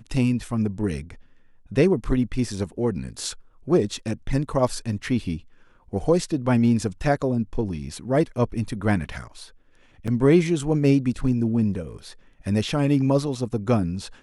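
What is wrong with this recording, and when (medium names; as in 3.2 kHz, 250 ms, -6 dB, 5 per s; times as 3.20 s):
10.07–10.08 s: dropout 6.6 ms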